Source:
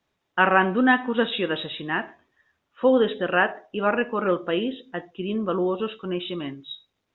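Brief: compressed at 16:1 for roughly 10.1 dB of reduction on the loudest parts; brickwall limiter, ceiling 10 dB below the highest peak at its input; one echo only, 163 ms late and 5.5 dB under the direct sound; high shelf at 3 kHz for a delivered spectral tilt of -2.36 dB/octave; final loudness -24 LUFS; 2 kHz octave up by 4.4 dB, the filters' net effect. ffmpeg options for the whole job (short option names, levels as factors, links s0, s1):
-af "equalizer=f=2000:t=o:g=3.5,highshelf=f=3000:g=7.5,acompressor=threshold=0.1:ratio=16,alimiter=limit=0.1:level=0:latency=1,aecho=1:1:163:0.531,volume=1.88"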